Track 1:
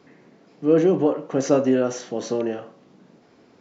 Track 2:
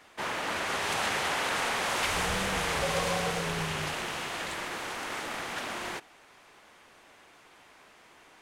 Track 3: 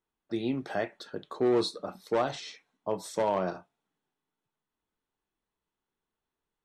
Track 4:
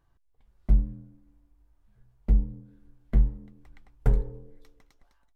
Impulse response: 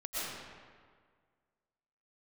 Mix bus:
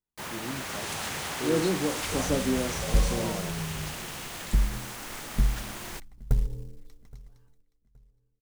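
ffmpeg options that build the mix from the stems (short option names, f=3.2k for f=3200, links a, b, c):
-filter_complex "[0:a]highpass=f=140:w=0.5412,highpass=f=140:w=1.3066,adelay=800,volume=-12dB[a];[1:a]acrusher=bits=6:mix=0:aa=0.000001,volume=-6.5dB[b];[2:a]volume=-11.5dB[c];[3:a]acompressor=threshold=-24dB:ratio=12,acrusher=bits=6:mode=log:mix=0:aa=0.000001,adelay=2250,volume=-4dB,asplit=2[d][e];[e]volume=-23dB,aecho=0:1:821|1642|2463|3284:1|0.28|0.0784|0.022[f];[a][b][c][d][f]amix=inputs=5:normalize=0,bass=f=250:g=10,treble=f=4k:g=8"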